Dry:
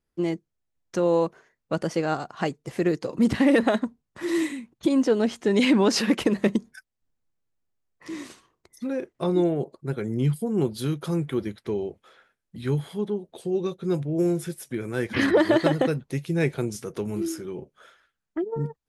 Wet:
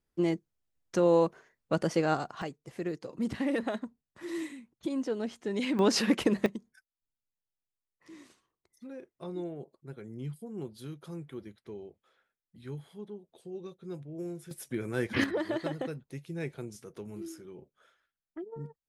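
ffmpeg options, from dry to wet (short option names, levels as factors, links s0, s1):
-af "asetnsamples=n=441:p=0,asendcmd='2.42 volume volume -11.5dB;5.79 volume volume -4dB;6.46 volume volume -15.5dB;14.51 volume volume -4dB;15.24 volume volume -13dB',volume=0.794"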